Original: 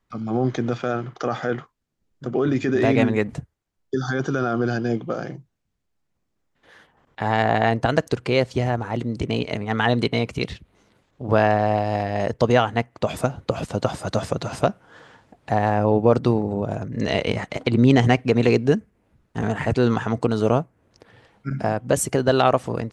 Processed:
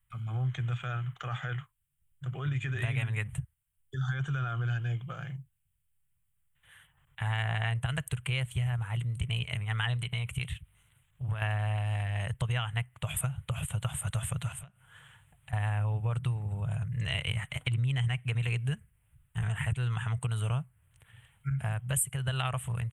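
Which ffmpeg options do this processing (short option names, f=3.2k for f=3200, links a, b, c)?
-filter_complex "[0:a]asettb=1/sr,asplit=3[a][b][c];[a]atrim=end=9.964[d];[b]atrim=start=9.96:end=11.42,asetpts=PTS-STARTPTS,afade=t=in:d=0.004:c=qsin,afade=t=out:st=1.456:d=0.004:c=qsin,acompressor=threshold=-20dB:ratio=6:attack=3.2:release=140:knee=1:detection=peak[e];[c]atrim=start=11.416[f];[d][e]acrossfade=d=0.004:c1=hsin:c2=qsin[g];[g][f]acrossfade=d=0.004:c1=qsin:c2=hsin,asettb=1/sr,asplit=3[h][i][j];[h]atrim=end=14.524[k];[i]atrim=start=14.52:end=15.53,asetpts=PTS-STARTPTS,afade=t=in:d=0.004:c=qsin,afade=t=out:st=1.006:d=0.004:c=qsin,acompressor=threshold=-37dB:ratio=10:attack=3.2:release=140:knee=1:detection=peak[l];[j]atrim=start=15.526[m];[k][l]acrossfade=d=0.004:c1=hsin:c2=qsin[n];[n][m]acrossfade=d=0.004:c1=qsin:c2=hsin,firequalizer=gain_entry='entry(140,0);entry(230,-29);entry(940,-13);entry(1400,-8);entry(3100,0);entry(4900,-29);entry(8500,9)':delay=0.05:min_phase=1,acompressor=threshold=-27dB:ratio=6"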